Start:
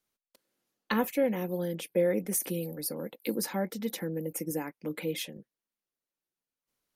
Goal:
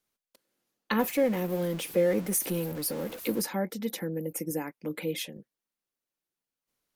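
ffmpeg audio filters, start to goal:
-filter_complex "[0:a]asettb=1/sr,asplit=3[s0][s1][s2];[s0]atrim=end=0.994[s3];[s1]atrim=start=0.99:end=3.42,asetpts=PTS-STARTPTS,afade=t=in:d=0.004:c=qsin,afade=t=out:st=2.426:d=0.004:c=qsin,aeval=exprs='val(0)+0.5*0.0126*sgn(val(0))':c=same[s4];[s2]atrim=start=3.416[s5];[s3][s4]acrossfade=d=0.004:c1=hsin:c2=qsin[s6];[s6][s5]acrossfade=d=0.004:c1=qsin:c2=hsin,volume=1.12"

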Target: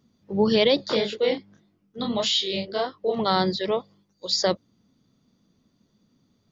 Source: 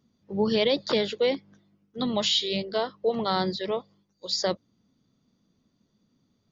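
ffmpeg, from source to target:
-filter_complex "[0:a]asplit=3[s0][s1][s2];[s0]afade=t=out:st=0.78:d=0.02[s3];[s1]flanger=delay=22.5:depth=7.3:speed=1.7,afade=t=in:st=0.78:d=0.02,afade=t=out:st=3.18:d=0.02[s4];[s2]afade=t=in:st=3.18:d=0.02[s5];[s3][s4][s5]amix=inputs=3:normalize=0,volume=1.58"

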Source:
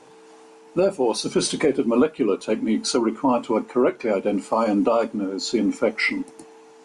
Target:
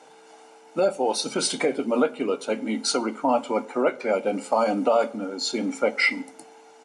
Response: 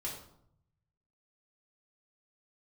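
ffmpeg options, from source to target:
-filter_complex "[0:a]highpass=260,aecho=1:1:1.4:0.48,asplit=2[s0][s1];[1:a]atrim=start_sample=2205,asetrate=41013,aresample=44100[s2];[s1][s2]afir=irnorm=-1:irlink=0,volume=0.15[s3];[s0][s3]amix=inputs=2:normalize=0,volume=0.841"

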